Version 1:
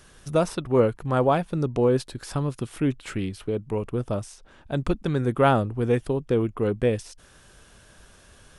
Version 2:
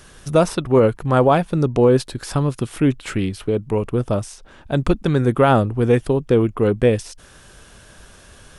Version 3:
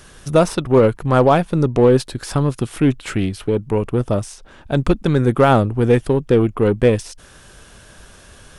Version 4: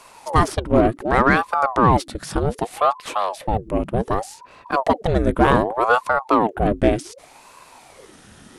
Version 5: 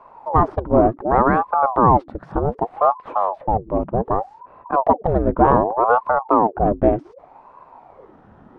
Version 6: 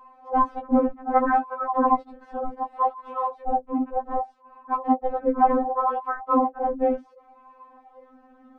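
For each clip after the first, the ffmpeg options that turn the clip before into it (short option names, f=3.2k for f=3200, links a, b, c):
-af "alimiter=level_in=10.5dB:limit=-1dB:release=50:level=0:latency=1,volume=-3.5dB"
-af "aeval=exprs='0.631*(cos(1*acos(clip(val(0)/0.631,-1,1)))-cos(1*PI/2))+0.0158*(cos(8*acos(clip(val(0)/0.631,-1,1)))-cos(8*PI/2))':c=same,volume=1.5dB"
-af "aeval=exprs='val(0)*sin(2*PI*590*n/s+590*0.75/0.66*sin(2*PI*0.66*n/s))':c=same"
-af "lowpass=f=930:t=q:w=1.8,volume=-1dB"
-af "afftfilt=real='re*3.46*eq(mod(b,12),0)':imag='im*3.46*eq(mod(b,12),0)':win_size=2048:overlap=0.75,volume=-3dB"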